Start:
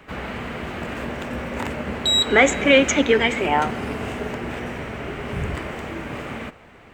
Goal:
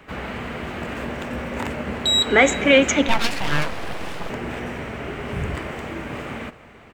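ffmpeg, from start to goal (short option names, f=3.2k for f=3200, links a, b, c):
-filter_complex "[0:a]asettb=1/sr,asplit=3[a][b][c];[a]atrim=end=3.084[d];[b]atrim=start=3.08:end=4.3,asetpts=PTS-STARTPTS,afade=t=in:d=0.004:c=qsin,afade=t=out:st=1.216:d=0.004:c=qsin,aeval=exprs='abs(val(0))':c=same[e];[c]atrim=start=4.296[f];[d][e]acrossfade=d=0.004:c1=hsin:c2=qsin[g];[g][f]acrossfade=d=0.004:c1=qsin:c2=hsin,asplit=2[h][i];[i]aecho=0:1:346:0.0891[j];[h][j]amix=inputs=2:normalize=0"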